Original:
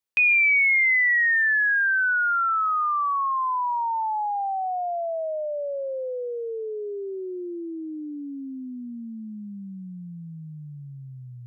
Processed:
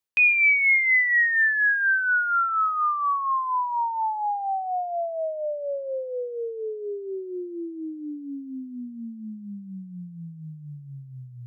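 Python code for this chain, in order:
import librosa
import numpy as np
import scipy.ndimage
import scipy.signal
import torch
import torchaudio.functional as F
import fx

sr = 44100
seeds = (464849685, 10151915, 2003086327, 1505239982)

y = x * (1.0 - 0.51 / 2.0 + 0.51 / 2.0 * np.cos(2.0 * np.pi * 4.2 * (np.arange(len(x)) / sr)))
y = F.gain(torch.from_numpy(y), 2.0).numpy()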